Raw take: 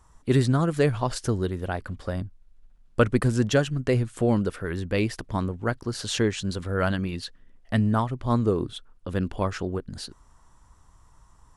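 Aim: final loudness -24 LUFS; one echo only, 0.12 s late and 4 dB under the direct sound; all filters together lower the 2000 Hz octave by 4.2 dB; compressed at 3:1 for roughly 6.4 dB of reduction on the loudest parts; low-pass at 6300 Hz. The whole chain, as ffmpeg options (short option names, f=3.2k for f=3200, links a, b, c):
-af "lowpass=6.3k,equalizer=f=2k:t=o:g=-6,acompressor=threshold=-24dB:ratio=3,aecho=1:1:120:0.631,volume=5dB"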